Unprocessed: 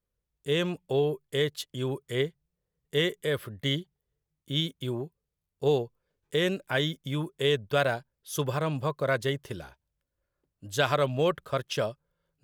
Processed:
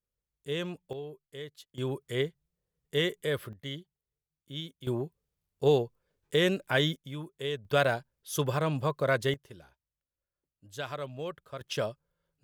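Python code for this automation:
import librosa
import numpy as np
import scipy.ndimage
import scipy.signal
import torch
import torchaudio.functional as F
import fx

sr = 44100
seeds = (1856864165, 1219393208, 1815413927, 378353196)

y = fx.gain(x, sr, db=fx.steps((0.0, -6.5), (0.93, -15.0), (1.78, -2.0), (3.53, -10.5), (4.87, 1.0), (6.96, -8.5), (7.65, 0.0), (9.34, -12.0), (11.61, -2.5)))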